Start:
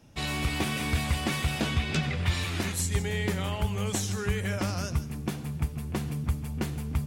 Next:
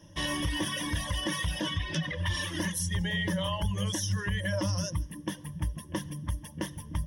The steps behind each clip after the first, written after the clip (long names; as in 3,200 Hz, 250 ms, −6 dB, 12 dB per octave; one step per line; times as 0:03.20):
reverb reduction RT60 1.6 s
EQ curve with evenly spaced ripples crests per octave 1.2, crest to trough 17 dB
brickwall limiter −21 dBFS, peak gain reduction 8 dB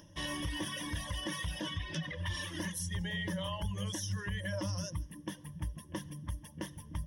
upward compression, threshold −46 dBFS
level −6.5 dB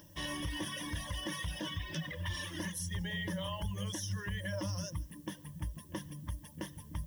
background noise violet −63 dBFS
level −1 dB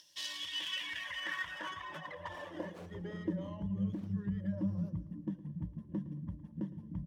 stylus tracing distortion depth 0.3 ms
band-pass filter sweep 4,400 Hz → 200 Hz, 0:00.24–0:03.79
repeating echo 111 ms, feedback 55%, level −16 dB
level +9 dB